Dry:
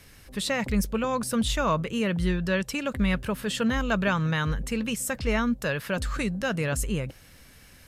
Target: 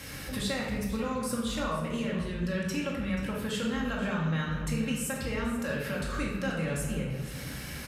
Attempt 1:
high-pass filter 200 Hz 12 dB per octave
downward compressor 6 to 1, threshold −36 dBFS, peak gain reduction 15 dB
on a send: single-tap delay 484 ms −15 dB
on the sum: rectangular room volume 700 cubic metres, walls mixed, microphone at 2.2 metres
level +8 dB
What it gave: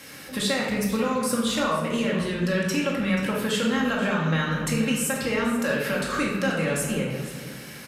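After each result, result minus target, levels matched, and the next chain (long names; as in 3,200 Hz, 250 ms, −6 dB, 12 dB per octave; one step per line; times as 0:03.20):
downward compressor: peak gain reduction −7.5 dB; 125 Hz band −3.5 dB
high-pass filter 200 Hz 12 dB per octave
downward compressor 6 to 1, threshold −45 dBFS, peak gain reduction 22.5 dB
on a send: single-tap delay 484 ms −15 dB
on the sum: rectangular room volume 700 cubic metres, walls mixed, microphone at 2.2 metres
level +8 dB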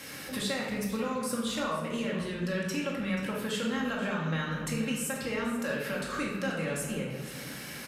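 125 Hz band −3.5 dB
high-pass filter 58 Hz 12 dB per octave
downward compressor 6 to 1, threshold −45 dBFS, peak gain reduction 22.5 dB
on a send: single-tap delay 484 ms −15 dB
on the sum: rectangular room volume 700 cubic metres, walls mixed, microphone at 2.2 metres
level +8 dB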